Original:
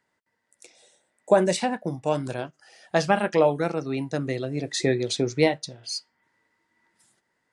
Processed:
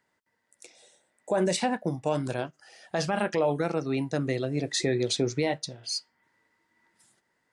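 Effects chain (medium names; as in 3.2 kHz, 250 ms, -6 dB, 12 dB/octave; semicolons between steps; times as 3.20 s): peak limiter -16 dBFS, peak gain reduction 11 dB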